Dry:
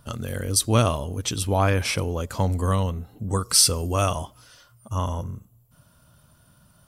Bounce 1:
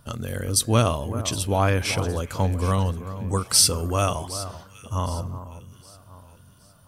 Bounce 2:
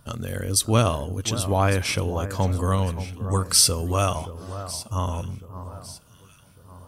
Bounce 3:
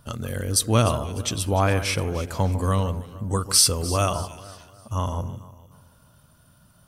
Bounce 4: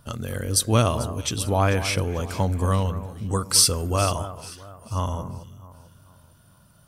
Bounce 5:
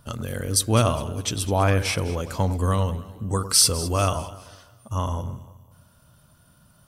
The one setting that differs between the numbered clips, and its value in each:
echo with dull and thin repeats by turns, time: 0.382, 0.576, 0.15, 0.221, 0.102 s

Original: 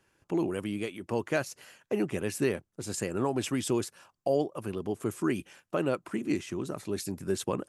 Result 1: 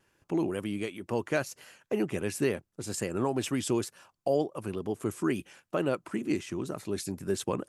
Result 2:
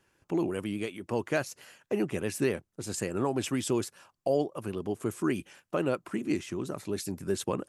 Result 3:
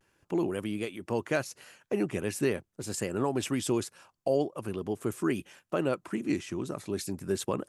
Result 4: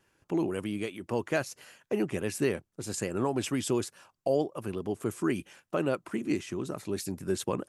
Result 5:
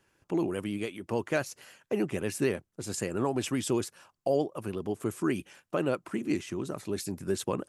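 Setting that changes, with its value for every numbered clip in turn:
vibrato, rate: 2.1, 8.1, 0.42, 4.6, 13 Hz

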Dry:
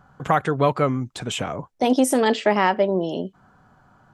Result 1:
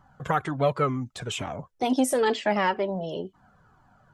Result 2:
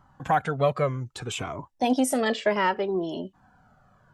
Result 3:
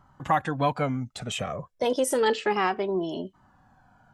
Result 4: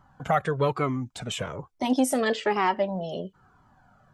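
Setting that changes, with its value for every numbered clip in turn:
cascading flanger, rate: 2.1, 0.63, 0.31, 1.1 Hz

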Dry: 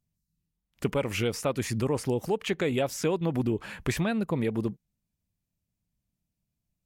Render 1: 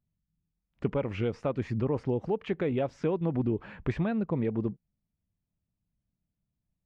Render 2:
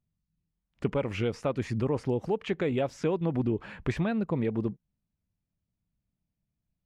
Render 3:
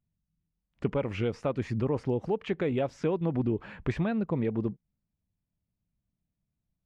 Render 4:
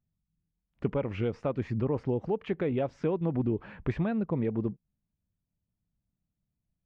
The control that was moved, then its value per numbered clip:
tape spacing loss, at 10 kHz: 38, 21, 30, 46 dB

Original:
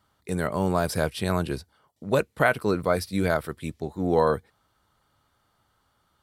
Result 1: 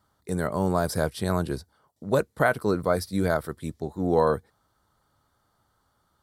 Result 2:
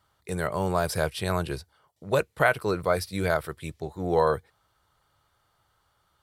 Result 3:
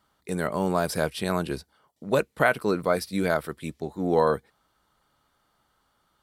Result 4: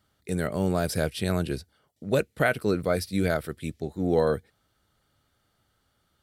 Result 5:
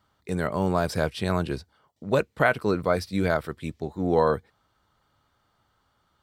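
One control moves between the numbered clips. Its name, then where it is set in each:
bell, frequency: 2600, 240, 94, 1000, 11000 Hz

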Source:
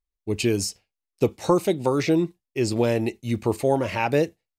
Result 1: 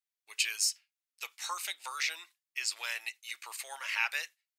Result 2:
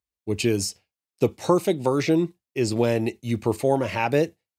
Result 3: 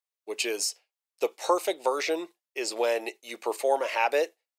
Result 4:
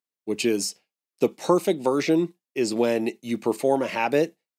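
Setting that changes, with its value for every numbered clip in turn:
HPF, cutoff: 1400, 64, 490, 180 Hz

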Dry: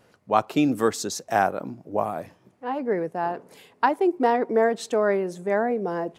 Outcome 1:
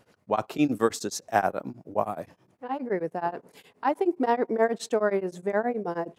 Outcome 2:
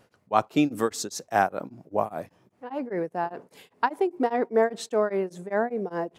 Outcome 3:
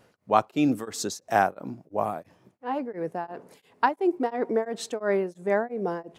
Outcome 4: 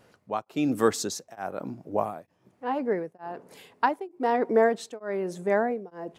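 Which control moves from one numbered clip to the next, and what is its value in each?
beating tremolo, nulls at: 9.5, 5, 2.9, 1.1 Hz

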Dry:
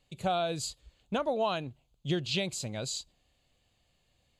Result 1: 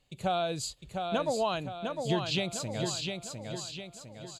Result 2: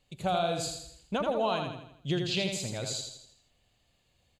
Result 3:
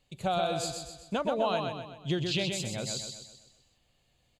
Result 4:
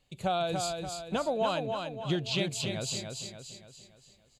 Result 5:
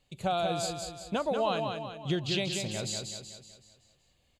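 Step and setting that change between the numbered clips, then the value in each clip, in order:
feedback echo, time: 705, 82, 127, 288, 188 ms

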